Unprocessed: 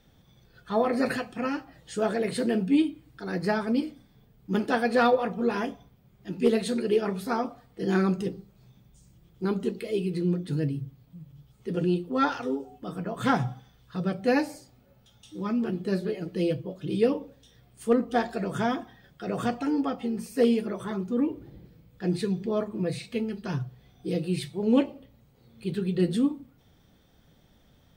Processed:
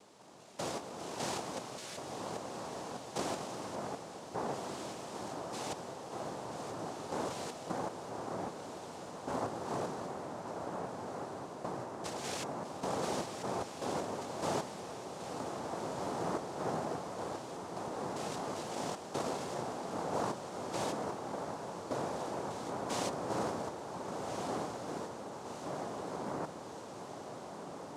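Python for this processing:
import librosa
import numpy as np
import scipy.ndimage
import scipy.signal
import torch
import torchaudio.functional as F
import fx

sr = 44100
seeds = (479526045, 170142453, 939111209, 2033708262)

p1 = fx.spec_steps(x, sr, hold_ms=200)
p2 = fx.over_compress(p1, sr, threshold_db=-38.0, ratio=-1.0)
p3 = fx.noise_vocoder(p2, sr, seeds[0], bands=2)
p4 = fx.low_shelf(p3, sr, hz=140.0, db=-6.5)
p5 = p4 + fx.echo_diffused(p4, sr, ms=1502, feedback_pct=70, wet_db=-7.5, dry=0)
y = p5 * librosa.db_to_amplitude(-2.0)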